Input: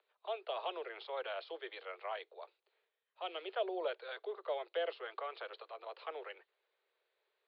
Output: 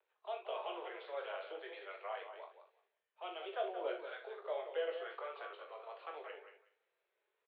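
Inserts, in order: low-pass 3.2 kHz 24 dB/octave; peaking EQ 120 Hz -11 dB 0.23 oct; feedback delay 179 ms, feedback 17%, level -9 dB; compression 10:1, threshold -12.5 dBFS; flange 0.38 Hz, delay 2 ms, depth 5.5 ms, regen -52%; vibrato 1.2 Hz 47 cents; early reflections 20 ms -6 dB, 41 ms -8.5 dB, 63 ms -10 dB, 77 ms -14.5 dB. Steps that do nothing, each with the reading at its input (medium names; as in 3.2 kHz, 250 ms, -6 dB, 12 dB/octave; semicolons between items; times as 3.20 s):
peaking EQ 120 Hz: input has nothing below 300 Hz; compression, threshold -12.5 dBFS: peak at its input -24.5 dBFS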